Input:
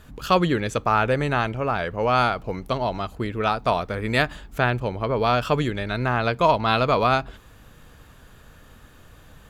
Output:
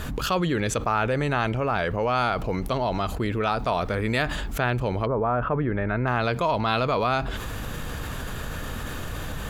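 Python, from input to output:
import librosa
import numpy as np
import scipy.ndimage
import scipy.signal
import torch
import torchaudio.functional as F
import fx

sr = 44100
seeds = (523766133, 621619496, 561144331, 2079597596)

y = fx.lowpass(x, sr, hz=fx.line((5.05, 1300.0), (6.06, 2200.0)), slope=24, at=(5.05, 6.06), fade=0.02)
y = fx.env_flatten(y, sr, amount_pct=70)
y = F.gain(torch.from_numpy(y), -7.0).numpy()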